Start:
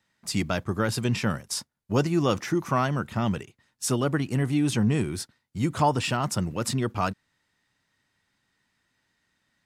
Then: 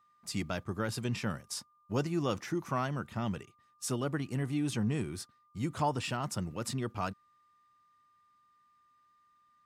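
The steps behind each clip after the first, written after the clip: whine 1200 Hz -57 dBFS; gain -8.5 dB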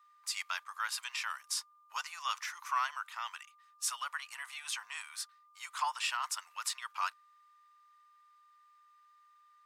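elliptic high-pass 1000 Hz, stop band 70 dB; gain +4.5 dB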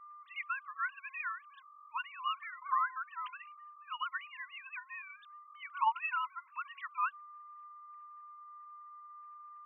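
sine-wave speech

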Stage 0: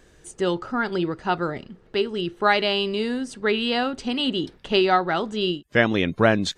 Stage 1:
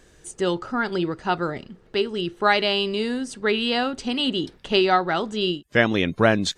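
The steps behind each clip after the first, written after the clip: bell 8400 Hz +3.5 dB 1.9 oct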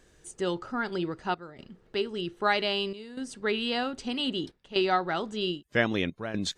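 step gate "xxxxxxxxxxx.." 123 bpm -12 dB; gain -6.5 dB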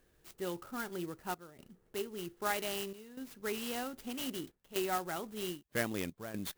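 clock jitter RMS 0.052 ms; gain -9 dB

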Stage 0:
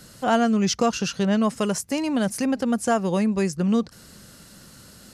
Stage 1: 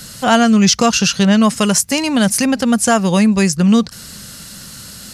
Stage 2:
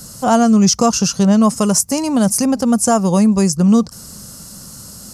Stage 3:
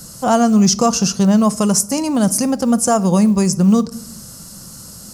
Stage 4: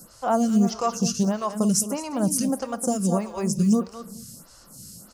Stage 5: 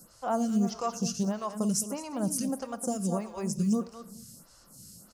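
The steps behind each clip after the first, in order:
EQ curve 210 Hz 0 dB, 340 Hz -6 dB, 3800 Hz +5 dB; maximiser +11.5 dB; gain -1 dB
band shelf 2500 Hz -12.5 dB
companded quantiser 8-bit; on a send at -14 dB: reverb RT60 0.65 s, pre-delay 6 ms; on the sum: gain -1 dB
feedback echo 0.212 s, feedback 16%, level -8.5 dB; photocell phaser 1.6 Hz; gain -6.5 dB
echo 87 ms -21 dB; gain -7 dB

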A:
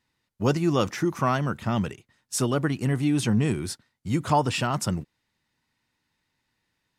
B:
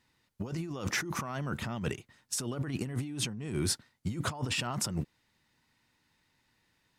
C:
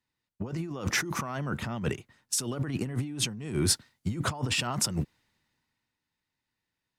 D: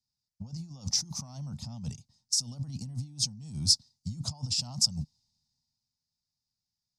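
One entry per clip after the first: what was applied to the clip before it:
negative-ratio compressor -32 dBFS, ratio -1; gain -3 dB
three-band expander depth 40%; gain +3 dB
EQ curve 150 Hz 0 dB, 250 Hz -6 dB, 360 Hz -28 dB, 570 Hz -15 dB, 820 Hz -8 dB, 1600 Hz -29 dB, 3000 Hz -14 dB, 5000 Hz +12 dB, 14000 Hz -12 dB; gain -3.5 dB

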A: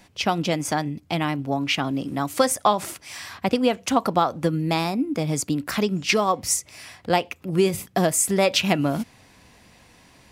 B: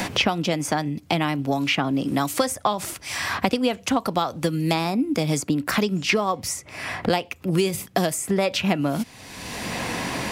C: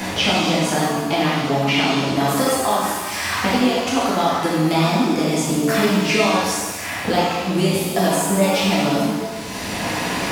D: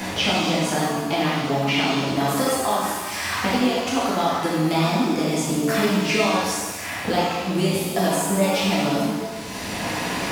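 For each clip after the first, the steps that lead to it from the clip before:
three-band squash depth 100%; gain -1 dB
shimmer reverb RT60 1.4 s, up +7 st, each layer -8 dB, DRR -8 dB; gain -4 dB
block floating point 7-bit; gain -3 dB

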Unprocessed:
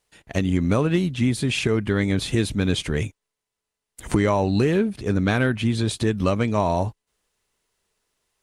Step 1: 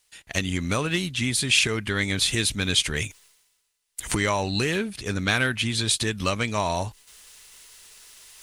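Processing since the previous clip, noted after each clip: low shelf 100 Hz +7.5 dB; reverse; upward compressor, threshold -37 dBFS; reverse; tilt shelf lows -9.5 dB, about 1200 Hz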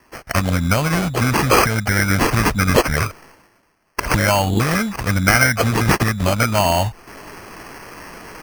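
comb 1.3 ms, depth 82%; in parallel at +1 dB: compressor, threshold -30 dBFS, peak gain reduction 16 dB; on the sum: sample-and-hold 12×; gain +3.5 dB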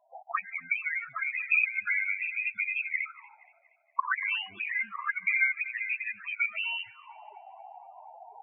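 auto-wah 680–2500 Hz, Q 5.5, up, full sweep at -12.5 dBFS; loudest bins only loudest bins 8; narrowing echo 0.236 s, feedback 50%, band-pass 1700 Hz, level -22 dB; gain +2 dB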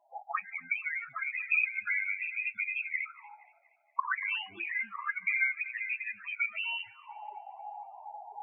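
small resonant body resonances 340/830 Hz, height 15 dB, ringing for 90 ms; on a send at -17 dB: reverb, pre-delay 3 ms; on the sum: gain -3 dB

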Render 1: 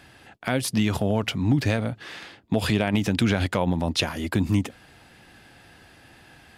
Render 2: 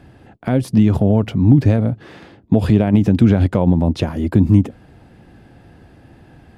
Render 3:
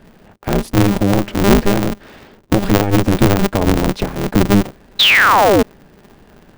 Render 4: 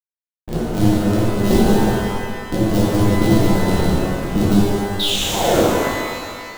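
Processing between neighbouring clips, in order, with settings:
tilt shelf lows +10 dB, about 920 Hz; gain +1.5 dB
painted sound fall, 4.99–5.63, 320–4000 Hz -10 dBFS; polarity switched at an audio rate 100 Hz
Butterworth band-stop 1600 Hz, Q 0.65; backlash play -14.5 dBFS; shimmer reverb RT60 2 s, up +12 st, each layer -8 dB, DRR -8 dB; gain -9.5 dB

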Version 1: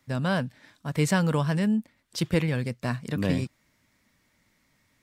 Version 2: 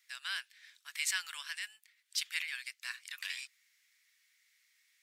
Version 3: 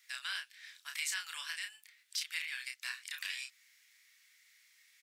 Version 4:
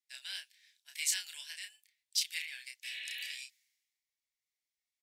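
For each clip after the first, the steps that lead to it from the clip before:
inverse Chebyshev high-pass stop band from 310 Hz, stop band 80 dB
compressor 2:1, threshold -46 dBFS, peak gain reduction 9.5 dB; doubler 31 ms -5 dB; gain +4.5 dB
spectral repair 2.86–3.27, 470–4500 Hz after; fixed phaser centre 500 Hz, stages 4; three-band expander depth 100%

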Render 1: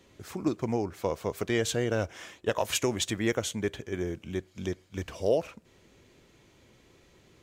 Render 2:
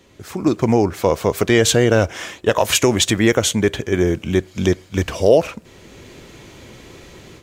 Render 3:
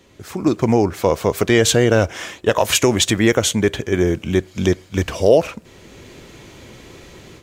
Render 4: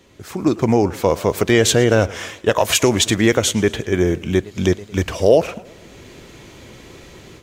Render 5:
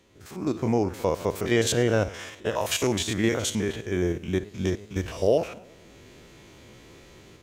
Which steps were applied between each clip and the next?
in parallel at +2.5 dB: limiter -20.5 dBFS, peak gain reduction 7.5 dB; on the sum: AGC gain up to 11.5 dB
nothing audible
warbling echo 0.112 s, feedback 48%, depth 192 cents, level -20 dB
stepped spectrum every 50 ms; gain -7.5 dB

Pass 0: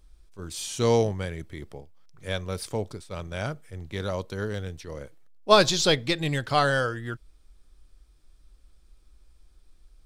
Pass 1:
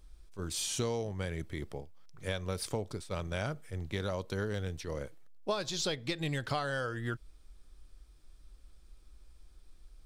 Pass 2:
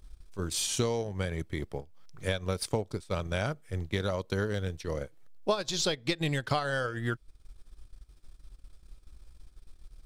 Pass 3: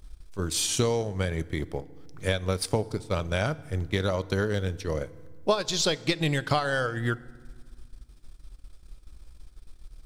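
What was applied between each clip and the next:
compressor 16:1, threshold -30 dBFS, peak gain reduction 19.5 dB
transient shaper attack +2 dB, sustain -10 dB; gain +4 dB
FDN reverb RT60 1.6 s, low-frequency decay 1.45×, high-frequency decay 0.65×, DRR 17.5 dB; gain +4 dB

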